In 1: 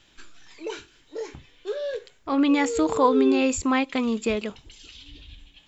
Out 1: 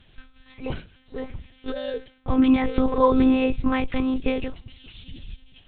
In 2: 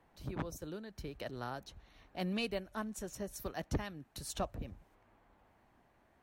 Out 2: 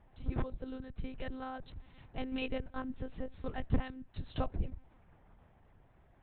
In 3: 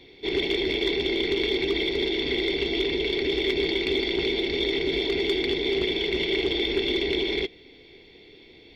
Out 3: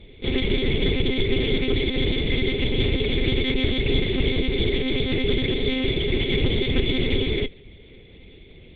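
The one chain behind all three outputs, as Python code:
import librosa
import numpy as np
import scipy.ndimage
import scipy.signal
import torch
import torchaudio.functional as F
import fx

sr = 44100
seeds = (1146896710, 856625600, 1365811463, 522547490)

y = fx.lpc_monotone(x, sr, seeds[0], pitch_hz=260.0, order=10)
y = fx.cheby_harmonics(y, sr, harmonics=(7,), levels_db=(-45,), full_scale_db=-6.5)
y = fx.low_shelf(y, sr, hz=210.0, db=11.5)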